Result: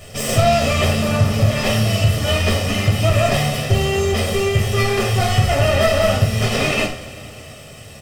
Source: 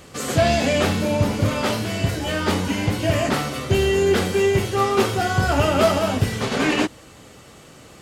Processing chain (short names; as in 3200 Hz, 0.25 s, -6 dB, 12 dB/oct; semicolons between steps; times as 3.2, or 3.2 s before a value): minimum comb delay 0.36 ms; compressor, threshold -20 dBFS, peak gain reduction 7 dB; comb 1.6 ms, depth 67%; two-slope reverb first 0.38 s, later 3.7 s, from -21 dB, DRR -0.5 dB; gain +2.5 dB